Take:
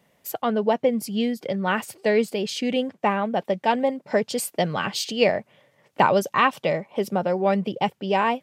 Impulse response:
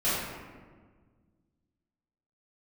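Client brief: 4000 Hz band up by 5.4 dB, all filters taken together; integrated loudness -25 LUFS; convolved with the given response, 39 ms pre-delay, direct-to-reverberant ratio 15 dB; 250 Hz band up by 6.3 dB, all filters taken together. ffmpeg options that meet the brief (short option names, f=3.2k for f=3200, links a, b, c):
-filter_complex "[0:a]equalizer=f=250:t=o:g=7.5,equalizer=f=4k:t=o:g=7.5,asplit=2[a][b];[1:a]atrim=start_sample=2205,adelay=39[c];[b][c]afir=irnorm=-1:irlink=0,volume=-27dB[d];[a][d]amix=inputs=2:normalize=0,volume=-4.5dB"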